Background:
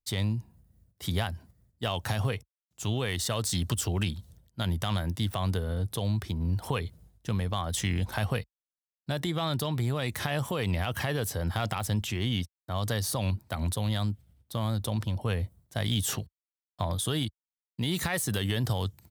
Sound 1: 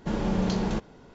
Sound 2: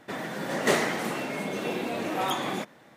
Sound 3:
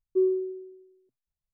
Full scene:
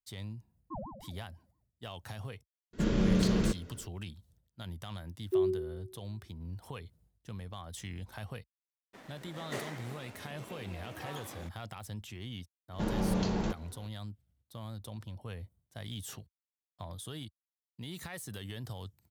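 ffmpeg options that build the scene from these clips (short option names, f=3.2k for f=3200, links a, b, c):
-filter_complex "[3:a]asplit=2[a][b];[1:a]asplit=2[c][d];[0:a]volume=-13.5dB[e];[a]aeval=exprs='val(0)*sin(2*PI*430*n/s+430*0.65/5.9*sin(2*PI*5.9*n/s))':c=same[f];[c]equalizer=f=830:w=2.4:g=-14.5[g];[2:a]aeval=exprs='sgn(val(0))*max(abs(val(0))-0.0112,0)':c=same[h];[f]atrim=end=1.53,asetpts=PTS-STARTPTS,volume=-15.5dB,afade=t=in:d=0.004:c=hsin,afade=t=out:st=1.526:d=0.004:c=hsin,adelay=550[i];[g]atrim=end=1.14,asetpts=PTS-STARTPTS,afade=t=in:d=0.004:c=hsin,afade=t=out:st=1.136:d=0.004:c=hsin,adelay=2730[j];[b]atrim=end=1.53,asetpts=PTS-STARTPTS,volume=-5dB,afade=t=in:d=0.004:c=hsin,afade=t=out:st=1.526:d=0.004:c=hsin,adelay=227997S[k];[h]atrim=end=2.96,asetpts=PTS-STARTPTS,volume=-15dB,afade=t=in:d=0.004:c=hsin,afade=t=out:st=2.956:d=0.004:c=hsin,adelay=8850[l];[d]atrim=end=1.14,asetpts=PTS-STARTPTS,volume=-4.5dB,afade=t=in:d=0.004:c=hsin,afade=t=out:st=1.136:d=0.004:c=hsin,adelay=12730[m];[e][i][j][k][l][m]amix=inputs=6:normalize=0"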